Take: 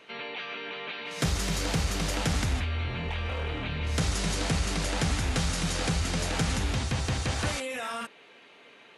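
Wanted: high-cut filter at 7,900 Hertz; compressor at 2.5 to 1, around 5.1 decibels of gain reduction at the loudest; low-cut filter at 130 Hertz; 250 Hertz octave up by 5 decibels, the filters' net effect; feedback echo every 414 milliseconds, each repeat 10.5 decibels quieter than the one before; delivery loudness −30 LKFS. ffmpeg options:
ffmpeg -i in.wav -af "highpass=130,lowpass=7900,equalizer=frequency=250:width_type=o:gain=8,acompressor=threshold=-29dB:ratio=2.5,aecho=1:1:414|828|1242:0.299|0.0896|0.0269,volume=2dB" out.wav

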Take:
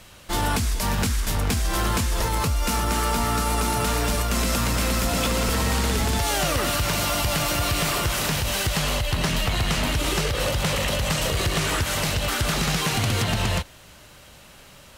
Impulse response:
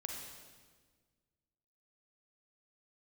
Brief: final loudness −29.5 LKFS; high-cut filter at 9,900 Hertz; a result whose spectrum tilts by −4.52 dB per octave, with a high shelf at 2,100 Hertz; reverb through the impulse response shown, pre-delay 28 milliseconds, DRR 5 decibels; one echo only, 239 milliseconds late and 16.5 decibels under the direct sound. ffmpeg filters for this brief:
-filter_complex "[0:a]lowpass=9900,highshelf=frequency=2100:gain=-5,aecho=1:1:239:0.15,asplit=2[link_01][link_02];[1:a]atrim=start_sample=2205,adelay=28[link_03];[link_02][link_03]afir=irnorm=-1:irlink=0,volume=-4dB[link_04];[link_01][link_04]amix=inputs=2:normalize=0,volume=-5.5dB"

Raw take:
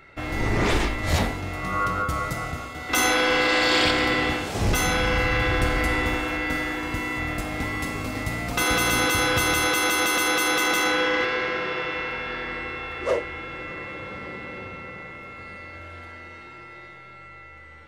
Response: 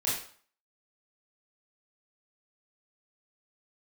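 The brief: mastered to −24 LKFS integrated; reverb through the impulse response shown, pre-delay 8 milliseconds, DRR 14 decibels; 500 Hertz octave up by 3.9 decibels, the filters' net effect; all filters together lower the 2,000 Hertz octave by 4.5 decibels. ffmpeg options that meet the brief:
-filter_complex "[0:a]equalizer=frequency=500:width_type=o:gain=4.5,equalizer=frequency=2000:width_type=o:gain=-6,asplit=2[link_01][link_02];[1:a]atrim=start_sample=2205,adelay=8[link_03];[link_02][link_03]afir=irnorm=-1:irlink=0,volume=-21.5dB[link_04];[link_01][link_04]amix=inputs=2:normalize=0"

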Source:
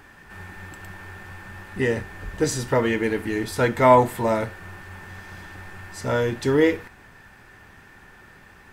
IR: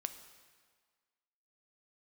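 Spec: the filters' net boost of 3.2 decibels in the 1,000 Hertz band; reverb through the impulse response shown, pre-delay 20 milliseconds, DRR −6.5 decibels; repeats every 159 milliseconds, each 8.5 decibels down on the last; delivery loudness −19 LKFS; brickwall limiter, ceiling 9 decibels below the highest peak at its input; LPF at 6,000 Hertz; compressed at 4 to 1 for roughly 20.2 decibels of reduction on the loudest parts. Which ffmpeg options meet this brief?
-filter_complex "[0:a]lowpass=6000,equalizer=frequency=1000:width_type=o:gain=3.5,acompressor=threshold=-32dB:ratio=4,alimiter=level_in=3dB:limit=-24dB:level=0:latency=1,volume=-3dB,aecho=1:1:159|318|477|636:0.376|0.143|0.0543|0.0206,asplit=2[link_01][link_02];[1:a]atrim=start_sample=2205,adelay=20[link_03];[link_02][link_03]afir=irnorm=-1:irlink=0,volume=8dB[link_04];[link_01][link_04]amix=inputs=2:normalize=0,volume=11.5dB"

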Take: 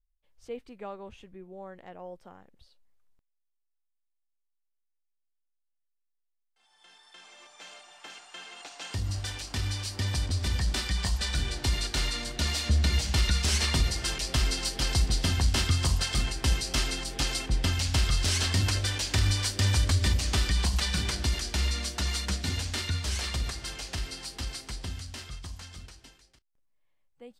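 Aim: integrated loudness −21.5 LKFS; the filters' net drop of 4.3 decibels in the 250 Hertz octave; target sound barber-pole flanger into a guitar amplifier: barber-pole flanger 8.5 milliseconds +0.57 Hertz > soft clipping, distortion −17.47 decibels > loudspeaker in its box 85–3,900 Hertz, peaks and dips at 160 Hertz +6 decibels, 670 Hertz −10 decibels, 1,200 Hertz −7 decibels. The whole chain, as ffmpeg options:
ffmpeg -i in.wav -filter_complex "[0:a]equalizer=frequency=250:width_type=o:gain=-9,asplit=2[link_01][link_02];[link_02]adelay=8.5,afreqshift=0.57[link_03];[link_01][link_03]amix=inputs=2:normalize=1,asoftclip=threshold=-22.5dB,highpass=85,equalizer=frequency=160:width_type=q:width=4:gain=6,equalizer=frequency=670:width_type=q:width=4:gain=-10,equalizer=frequency=1200:width_type=q:width=4:gain=-7,lowpass=frequency=3900:width=0.5412,lowpass=frequency=3900:width=1.3066,volume=15.5dB" out.wav

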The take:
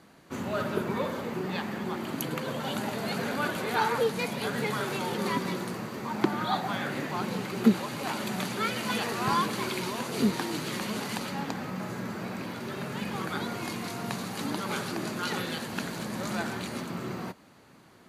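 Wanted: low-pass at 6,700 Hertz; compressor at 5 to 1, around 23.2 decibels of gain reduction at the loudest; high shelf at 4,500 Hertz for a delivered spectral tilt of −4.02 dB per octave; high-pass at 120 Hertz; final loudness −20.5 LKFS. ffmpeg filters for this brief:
ffmpeg -i in.wav -af "highpass=120,lowpass=6700,highshelf=frequency=4500:gain=-6,acompressor=threshold=-43dB:ratio=5,volume=24.5dB" out.wav

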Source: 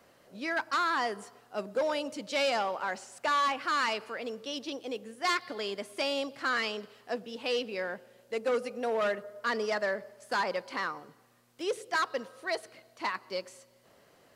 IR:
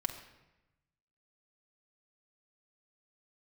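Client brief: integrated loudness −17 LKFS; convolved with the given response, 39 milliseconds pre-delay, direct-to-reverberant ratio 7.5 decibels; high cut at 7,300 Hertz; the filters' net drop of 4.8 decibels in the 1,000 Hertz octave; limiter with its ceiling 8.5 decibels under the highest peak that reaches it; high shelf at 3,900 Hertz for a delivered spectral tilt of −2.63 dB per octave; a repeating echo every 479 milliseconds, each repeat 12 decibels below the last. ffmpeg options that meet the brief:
-filter_complex "[0:a]lowpass=7300,equalizer=frequency=1000:width_type=o:gain=-6.5,highshelf=frequency=3900:gain=4,alimiter=level_in=4dB:limit=-24dB:level=0:latency=1,volume=-4dB,aecho=1:1:479|958|1437:0.251|0.0628|0.0157,asplit=2[link_01][link_02];[1:a]atrim=start_sample=2205,adelay=39[link_03];[link_02][link_03]afir=irnorm=-1:irlink=0,volume=-9.5dB[link_04];[link_01][link_04]amix=inputs=2:normalize=0,volume=20.5dB"

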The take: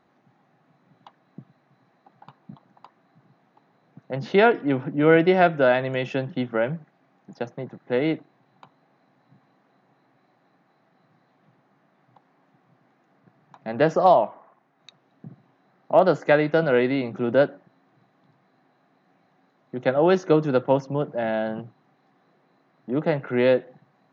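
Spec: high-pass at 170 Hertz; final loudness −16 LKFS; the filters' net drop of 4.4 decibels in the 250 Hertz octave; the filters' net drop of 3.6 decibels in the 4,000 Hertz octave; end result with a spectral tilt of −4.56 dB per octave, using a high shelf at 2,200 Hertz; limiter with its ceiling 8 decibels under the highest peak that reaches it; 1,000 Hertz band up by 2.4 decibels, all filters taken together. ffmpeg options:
ffmpeg -i in.wav -af "highpass=170,equalizer=frequency=250:width_type=o:gain=-5.5,equalizer=frequency=1000:width_type=o:gain=4,highshelf=frequency=2200:gain=3.5,equalizer=frequency=4000:width_type=o:gain=-9,volume=8.5dB,alimiter=limit=-2.5dB:level=0:latency=1" out.wav

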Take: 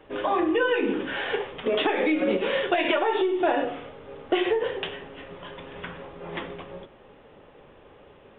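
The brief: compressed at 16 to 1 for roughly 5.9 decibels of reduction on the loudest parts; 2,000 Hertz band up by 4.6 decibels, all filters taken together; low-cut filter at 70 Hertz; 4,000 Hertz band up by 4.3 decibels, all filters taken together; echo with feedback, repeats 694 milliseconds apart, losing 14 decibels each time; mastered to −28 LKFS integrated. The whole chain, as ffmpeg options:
ffmpeg -i in.wav -af "highpass=70,equalizer=frequency=2000:width_type=o:gain=5,equalizer=frequency=4000:width_type=o:gain=3.5,acompressor=threshold=-23dB:ratio=16,aecho=1:1:694|1388:0.2|0.0399,volume=1dB" out.wav

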